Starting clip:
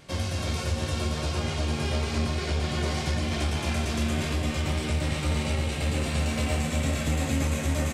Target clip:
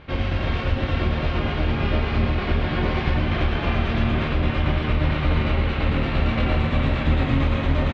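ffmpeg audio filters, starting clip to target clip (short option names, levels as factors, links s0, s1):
-filter_complex "[0:a]asplit=2[s0][s1];[s1]asetrate=22050,aresample=44100,atempo=2,volume=0.891[s2];[s0][s2]amix=inputs=2:normalize=0,lowpass=f=3300:w=0.5412,lowpass=f=3300:w=1.3066,volume=1.58"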